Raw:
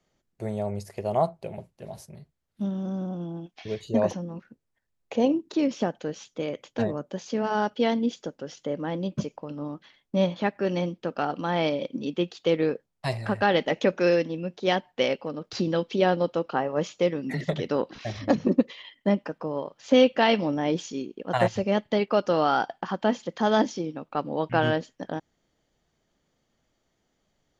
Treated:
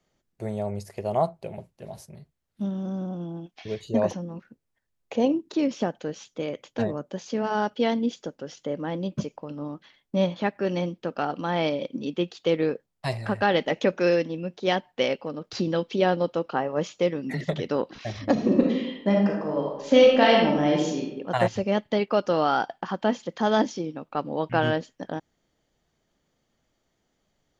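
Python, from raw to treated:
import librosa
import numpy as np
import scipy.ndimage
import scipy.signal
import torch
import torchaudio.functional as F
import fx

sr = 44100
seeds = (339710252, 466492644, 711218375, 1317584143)

y = fx.reverb_throw(x, sr, start_s=18.32, length_s=2.7, rt60_s=0.87, drr_db=-1.5)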